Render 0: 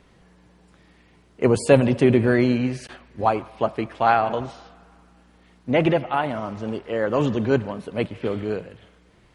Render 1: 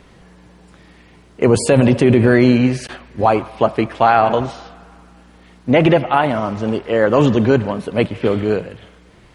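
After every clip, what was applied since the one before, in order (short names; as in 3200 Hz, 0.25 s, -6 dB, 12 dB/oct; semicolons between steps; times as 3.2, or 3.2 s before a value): maximiser +10 dB; gain -1 dB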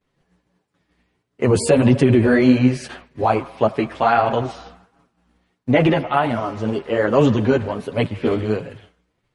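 chorus voices 2, 1.5 Hz, delay 10 ms, depth 3 ms; expander -37 dBFS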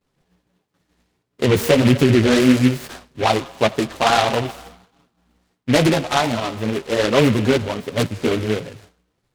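noise-modulated delay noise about 2100 Hz, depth 0.095 ms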